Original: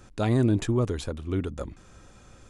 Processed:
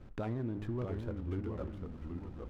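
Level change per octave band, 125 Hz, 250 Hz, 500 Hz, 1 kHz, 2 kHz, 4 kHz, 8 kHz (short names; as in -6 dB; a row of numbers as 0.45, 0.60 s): -11.0 dB, -11.5 dB, -11.0 dB, -11.0 dB, -13.0 dB, -20.0 dB, under -25 dB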